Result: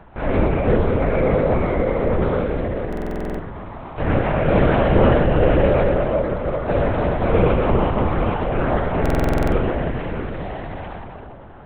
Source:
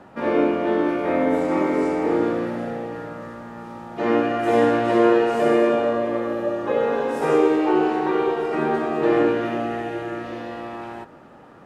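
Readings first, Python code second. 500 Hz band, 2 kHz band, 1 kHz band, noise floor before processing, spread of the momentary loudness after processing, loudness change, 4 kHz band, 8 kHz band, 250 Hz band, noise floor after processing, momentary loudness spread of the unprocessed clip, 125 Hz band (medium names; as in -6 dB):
+0.5 dB, +1.5 dB, 0.0 dB, -46 dBFS, 14 LU, +1.5 dB, +0.5 dB, no reading, -0.5 dB, -37 dBFS, 15 LU, +16.0 dB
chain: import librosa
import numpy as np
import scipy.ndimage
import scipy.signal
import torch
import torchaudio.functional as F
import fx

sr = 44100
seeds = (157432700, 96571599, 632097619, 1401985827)

y = fx.echo_split(x, sr, split_hz=760.0, low_ms=284, high_ms=116, feedback_pct=52, wet_db=-4.5)
y = fx.lpc_vocoder(y, sr, seeds[0], excitation='whisper', order=8)
y = fx.buffer_glitch(y, sr, at_s=(2.88, 9.01), block=2048, repeats=10)
y = F.gain(torch.from_numpy(y), 1.5).numpy()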